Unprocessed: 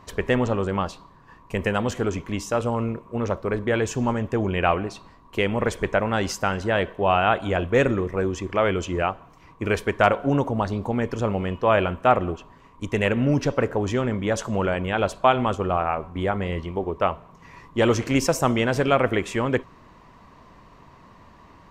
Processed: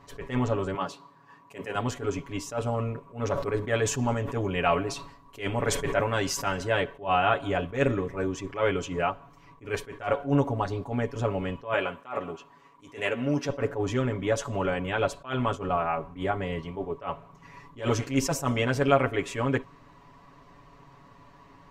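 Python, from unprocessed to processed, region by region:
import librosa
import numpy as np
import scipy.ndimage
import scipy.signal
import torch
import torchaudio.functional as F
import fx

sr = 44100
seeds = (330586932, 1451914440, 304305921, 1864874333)

y = fx.chain(x, sr, fx.highpass(hz=170.0, slope=12),
    fx.hum_notches(base_hz=50, count=10), at=(0.74, 1.75))
y = fx.chain(y, sr, fx.high_shelf(hz=4800.0, db=5.5),
    fx.sustainer(db_per_s=78.0), at=(3.16, 6.81))
y = fx.chain(y, sr, fx.highpass(hz=400.0, slope=6),
    fx.doubler(ms=13.0, db=-11.5), at=(11.73, 13.49))
y = y + 0.94 * np.pad(y, (int(7.1 * sr / 1000.0), 0))[:len(y)]
y = fx.attack_slew(y, sr, db_per_s=190.0)
y = F.gain(torch.from_numpy(y), -6.0).numpy()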